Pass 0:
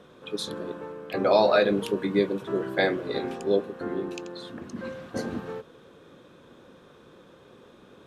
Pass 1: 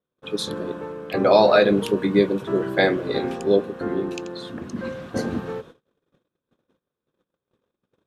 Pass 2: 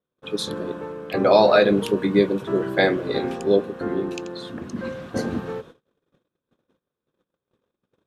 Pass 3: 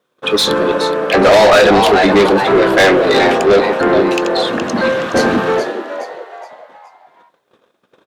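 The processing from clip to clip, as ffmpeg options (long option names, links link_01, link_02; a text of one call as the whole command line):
ffmpeg -i in.wav -af "agate=range=-39dB:threshold=-47dB:ratio=16:detection=peak,lowshelf=frequency=200:gain=4,volume=4.5dB" out.wav
ffmpeg -i in.wav -af anull out.wav
ffmpeg -i in.wav -filter_complex "[0:a]asplit=5[link_01][link_02][link_03][link_04][link_05];[link_02]adelay=420,afreqshift=130,volume=-13dB[link_06];[link_03]adelay=840,afreqshift=260,volume=-21.9dB[link_07];[link_04]adelay=1260,afreqshift=390,volume=-30.7dB[link_08];[link_05]adelay=1680,afreqshift=520,volume=-39.6dB[link_09];[link_01][link_06][link_07][link_08][link_09]amix=inputs=5:normalize=0,asplit=2[link_10][link_11];[link_11]highpass=frequency=720:poles=1,volume=29dB,asoftclip=type=tanh:threshold=-1dB[link_12];[link_10][link_12]amix=inputs=2:normalize=0,lowpass=frequency=4100:poles=1,volume=-6dB" out.wav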